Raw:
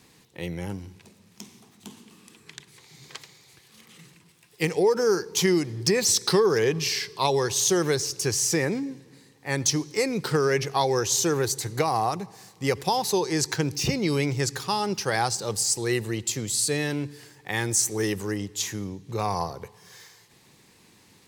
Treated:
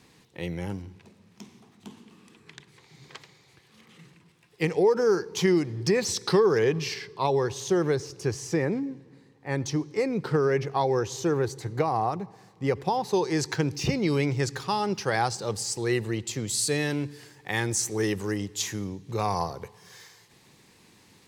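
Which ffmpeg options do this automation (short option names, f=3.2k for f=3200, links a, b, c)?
-af "asetnsamples=n=441:p=0,asendcmd='0.82 lowpass f 2400;6.94 lowpass f 1200;13.13 lowpass f 3200;16.49 lowpass f 8300;17.6 lowpass f 4600;18.24 lowpass f 9300',lowpass=f=5.2k:p=1"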